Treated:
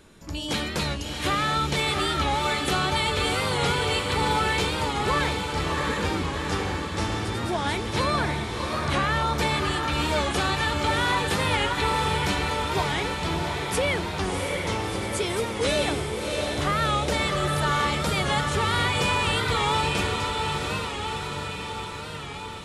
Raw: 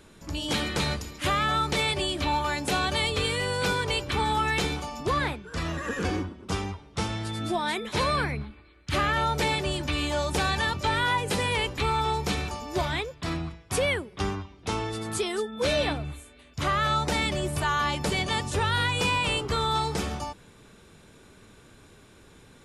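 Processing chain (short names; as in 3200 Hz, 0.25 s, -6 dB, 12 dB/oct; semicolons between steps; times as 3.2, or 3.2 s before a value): 15.23–16.02 high shelf 9400 Hz +11 dB; diffused feedback echo 0.676 s, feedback 69%, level -3.5 dB; record warp 45 rpm, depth 100 cents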